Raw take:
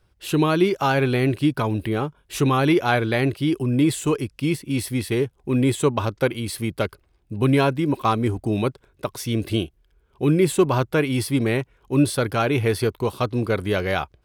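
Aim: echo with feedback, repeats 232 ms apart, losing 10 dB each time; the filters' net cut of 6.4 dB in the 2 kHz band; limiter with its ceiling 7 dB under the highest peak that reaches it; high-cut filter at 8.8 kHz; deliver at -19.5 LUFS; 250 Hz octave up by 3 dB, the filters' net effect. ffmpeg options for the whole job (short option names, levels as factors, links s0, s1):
-af "lowpass=8800,equalizer=f=250:t=o:g=4,equalizer=f=2000:t=o:g=-9,alimiter=limit=0.237:level=0:latency=1,aecho=1:1:232|464|696|928:0.316|0.101|0.0324|0.0104,volume=1.41"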